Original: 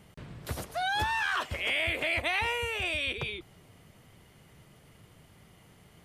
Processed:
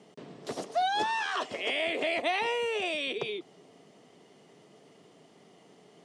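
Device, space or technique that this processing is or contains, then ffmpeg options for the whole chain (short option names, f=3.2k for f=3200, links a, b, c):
television speaker: -filter_complex "[0:a]asettb=1/sr,asplit=3[a][b][c];[a]atrim=end=2.254[d];[b]atrim=start=2.25:end=2.72,asetpts=PTS-STARTPTS,afade=t=in:d=0.004:c=qsin,afade=t=out:st=0.466:d=0.004:c=qsin,bandreject=f=6.8k:w=6.6[e];[c]atrim=start=2.716[f];[d][e]acrossfade=d=0.004:c1=hsin:c2=qsin[g];[g][f]acrossfade=d=0.004:c1=qsin:c2=hsin,highpass=f=180:w=0.5412,highpass=f=180:w=1.3066,equalizer=f=280:t=q:w=4:g=5,equalizer=f=420:t=q:w=4:g=9,equalizer=f=690:t=q:w=4:g=6,equalizer=f=1.5k:t=q:w=4:g=-6,equalizer=f=2.3k:t=q:w=4:g=-4,equalizer=f=5.5k:t=q:w=4:g=3,lowpass=f=8.3k:w=0.5412,lowpass=f=8.3k:w=1.3066"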